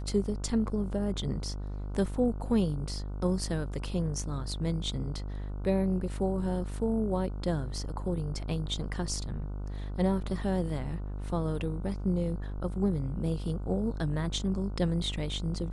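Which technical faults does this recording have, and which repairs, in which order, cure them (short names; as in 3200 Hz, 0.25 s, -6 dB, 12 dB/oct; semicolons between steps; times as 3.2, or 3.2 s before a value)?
buzz 50 Hz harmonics 30 -36 dBFS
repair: de-hum 50 Hz, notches 30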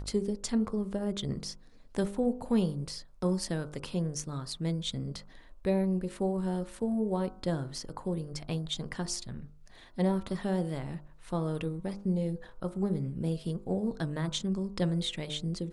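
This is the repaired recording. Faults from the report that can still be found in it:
none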